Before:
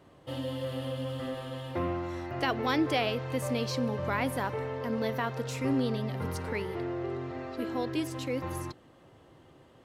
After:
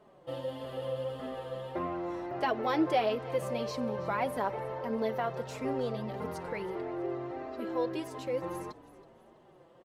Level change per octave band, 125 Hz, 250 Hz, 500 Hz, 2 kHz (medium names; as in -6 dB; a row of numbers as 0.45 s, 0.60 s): -8.0 dB, -4.0 dB, +0.5 dB, -5.0 dB